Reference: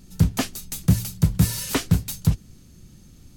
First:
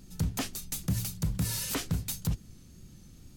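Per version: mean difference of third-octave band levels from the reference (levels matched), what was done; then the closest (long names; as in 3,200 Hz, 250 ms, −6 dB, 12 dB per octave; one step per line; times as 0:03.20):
5.5 dB: brickwall limiter −17.5 dBFS, peak gain reduction 10.5 dB
tape wow and flutter 43 cents
level −3.5 dB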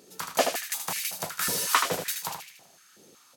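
12.5 dB: on a send: repeating echo 77 ms, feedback 50%, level −6 dB
on the sum: high-pass on a step sequencer 5.4 Hz 450–2,200 Hz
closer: first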